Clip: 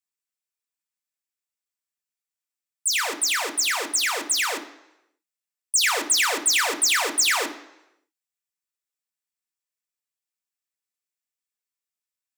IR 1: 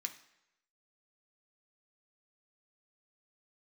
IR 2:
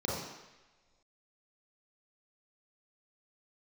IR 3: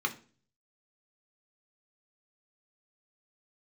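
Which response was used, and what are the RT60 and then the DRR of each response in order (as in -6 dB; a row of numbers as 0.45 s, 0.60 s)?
1; no single decay rate, no single decay rate, 0.40 s; 4.0 dB, -5.5 dB, 2.5 dB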